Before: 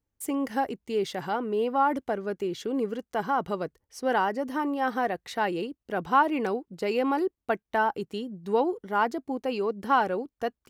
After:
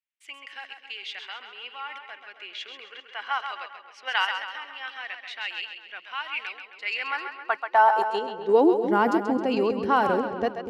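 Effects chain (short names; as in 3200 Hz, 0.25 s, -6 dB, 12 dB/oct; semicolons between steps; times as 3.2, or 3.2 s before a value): 2.39–4.33 bell 900 Hz +9.5 dB 2.8 oct; in parallel at +3 dB: level quantiser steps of 16 dB; on the sum: high-pass sweep 2600 Hz -> 67 Hz, 6.69–10.04; split-band echo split 480 Hz, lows 0.243 s, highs 0.133 s, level -7 dB; low-pass opened by the level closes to 2200 Hz, open at -15 dBFS; gain -2 dB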